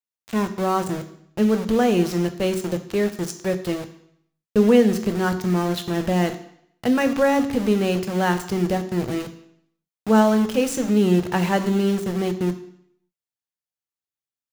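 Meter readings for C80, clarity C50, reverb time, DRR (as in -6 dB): 15.0 dB, 12.5 dB, 0.70 s, 8.0 dB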